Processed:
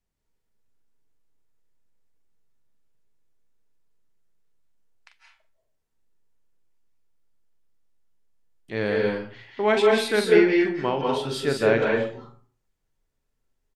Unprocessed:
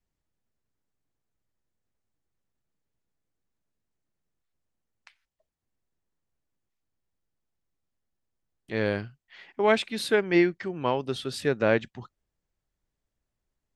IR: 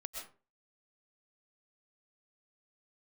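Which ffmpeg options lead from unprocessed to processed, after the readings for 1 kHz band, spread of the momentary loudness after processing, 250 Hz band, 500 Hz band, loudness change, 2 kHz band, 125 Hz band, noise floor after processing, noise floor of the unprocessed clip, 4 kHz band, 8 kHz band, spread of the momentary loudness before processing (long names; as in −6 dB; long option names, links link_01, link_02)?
+3.5 dB, 13 LU, +3.5 dB, +5.5 dB, +4.0 dB, +4.0 dB, +1.5 dB, −76 dBFS, −85 dBFS, +3.5 dB, +3.5 dB, 11 LU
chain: -filter_complex "[0:a]asplit=2[link_01][link_02];[link_02]adelay=43,volume=-8dB[link_03];[link_01][link_03]amix=inputs=2:normalize=0[link_04];[1:a]atrim=start_sample=2205,asetrate=31311,aresample=44100[link_05];[link_04][link_05]afir=irnorm=-1:irlink=0,volume=3dB"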